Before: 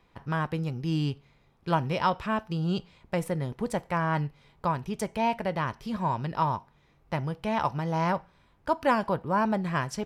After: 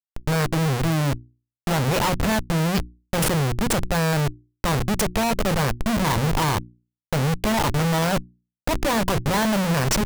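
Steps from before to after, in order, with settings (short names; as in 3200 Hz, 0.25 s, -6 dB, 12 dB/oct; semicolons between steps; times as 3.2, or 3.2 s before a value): tone controls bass +3 dB, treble +13 dB; Schmitt trigger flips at -32.5 dBFS; notches 60/120/180/240/300/360 Hz; gain +8 dB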